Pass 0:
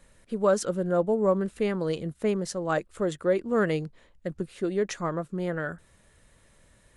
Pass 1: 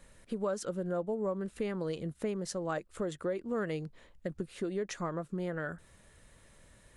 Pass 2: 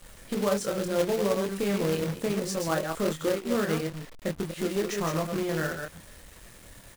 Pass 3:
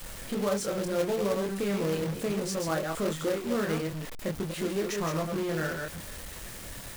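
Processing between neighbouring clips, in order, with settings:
downward compressor 3 to 1, threshold −34 dBFS, peak gain reduction 12 dB
delay that plays each chunk backwards 122 ms, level −4.5 dB; double-tracking delay 25 ms −3 dB; log-companded quantiser 4 bits; level +4 dB
converter with a step at zero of −30.5 dBFS; level −4 dB

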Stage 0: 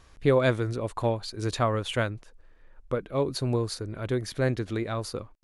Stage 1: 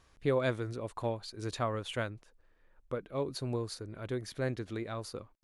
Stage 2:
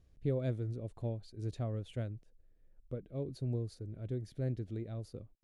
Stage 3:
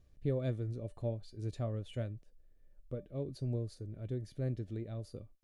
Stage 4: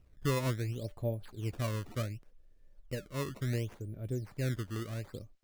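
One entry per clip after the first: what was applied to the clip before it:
low-shelf EQ 72 Hz −5.5 dB; level −7.5 dB
drawn EQ curve 120 Hz 0 dB, 690 Hz −12 dB, 1,000 Hz −25 dB, 1,900 Hz −19 dB, 3,100 Hz −17 dB; level +2.5 dB
tuned comb filter 590 Hz, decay 0.2 s, harmonics all, mix 70%; level +9.5 dB
sample-and-hold swept by an LFO 16×, swing 160% 0.69 Hz; level +2.5 dB

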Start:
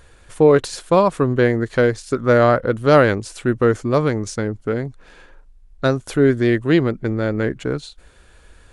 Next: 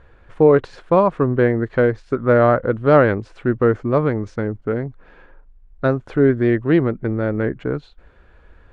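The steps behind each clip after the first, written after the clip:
low-pass filter 1,900 Hz 12 dB per octave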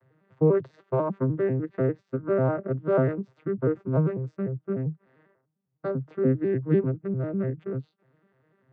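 vocoder with an arpeggio as carrier minor triad, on C3, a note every 99 ms
level −7.5 dB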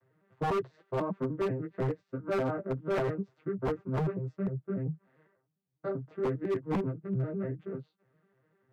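multi-voice chorus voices 4, 0.84 Hz, delay 14 ms, depth 3.8 ms
wave folding −22 dBFS
level −2 dB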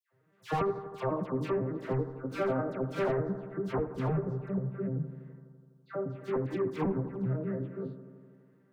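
all-pass dispersion lows, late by 111 ms, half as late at 1,600 Hz
on a send: bucket-brigade delay 83 ms, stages 1,024, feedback 76%, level −13 dB

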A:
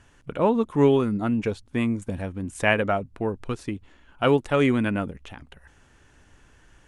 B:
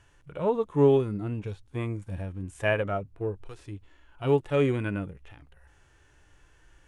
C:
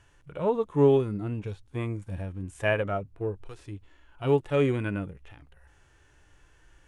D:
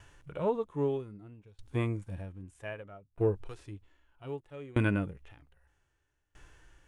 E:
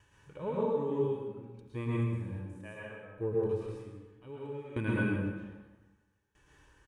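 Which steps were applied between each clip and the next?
parametric band 230 Hz −13.5 dB 0.3 octaves; harmonic and percussive parts rebalanced percussive −17 dB
no processing that can be heard
tremolo with a ramp in dB decaying 0.63 Hz, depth 29 dB; level +5 dB
notch comb filter 690 Hz; single-tap delay 153 ms −13.5 dB; dense smooth reverb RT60 1.2 s, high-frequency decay 0.65×, pre-delay 100 ms, DRR −5.5 dB; level −7 dB

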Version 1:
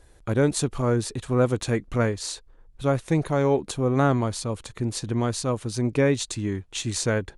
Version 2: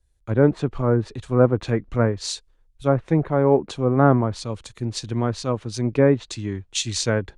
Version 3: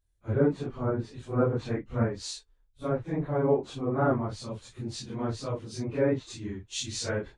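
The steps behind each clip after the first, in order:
treble cut that deepens with the level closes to 1,500 Hz, closed at −18 dBFS; multiband upward and downward expander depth 70%; level +3 dB
random phases in long frames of 100 ms; level −8.5 dB

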